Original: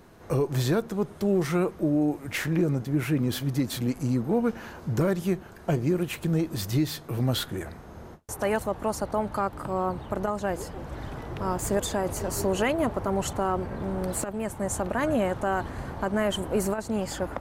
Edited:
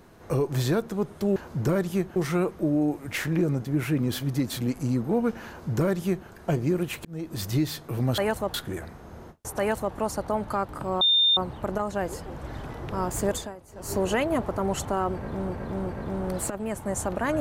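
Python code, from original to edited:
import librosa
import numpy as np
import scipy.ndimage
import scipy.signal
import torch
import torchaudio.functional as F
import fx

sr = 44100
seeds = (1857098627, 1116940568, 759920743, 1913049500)

y = fx.edit(x, sr, fx.duplicate(start_s=4.68, length_s=0.8, to_s=1.36),
    fx.fade_in_span(start_s=6.25, length_s=0.38),
    fx.duplicate(start_s=8.43, length_s=0.36, to_s=7.38),
    fx.insert_tone(at_s=9.85, length_s=0.36, hz=3620.0, db=-17.0),
    fx.fade_down_up(start_s=11.82, length_s=0.61, db=-20.5, fade_s=0.3, curve='qua'),
    fx.repeat(start_s=13.61, length_s=0.37, count=3), tone=tone)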